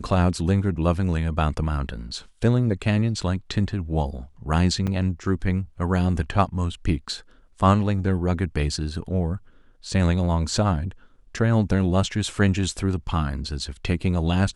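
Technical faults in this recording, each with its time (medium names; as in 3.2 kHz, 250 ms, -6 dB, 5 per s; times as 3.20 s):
4.87–4.88 s: dropout 6 ms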